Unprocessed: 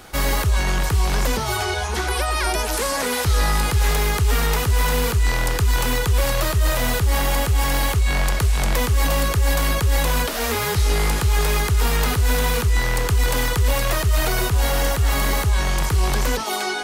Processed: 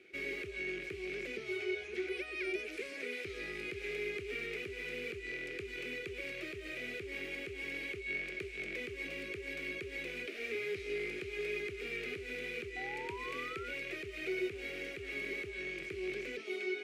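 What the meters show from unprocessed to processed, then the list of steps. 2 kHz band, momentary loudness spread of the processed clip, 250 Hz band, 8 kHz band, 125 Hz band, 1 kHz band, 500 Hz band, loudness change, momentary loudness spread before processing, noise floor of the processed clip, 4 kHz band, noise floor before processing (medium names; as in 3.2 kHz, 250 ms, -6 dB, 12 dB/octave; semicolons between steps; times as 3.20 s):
-13.0 dB, 3 LU, -16.0 dB, -32.5 dB, -35.0 dB, -28.0 dB, -14.0 dB, -19.0 dB, 2 LU, -46 dBFS, -21.0 dB, -24 dBFS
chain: two resonant band-passes 940 Hz, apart 2.6 oct; painted sound rise, 12.76–13.74 s, 740–1500 Hz -42 dBFS; trim -5.5 dB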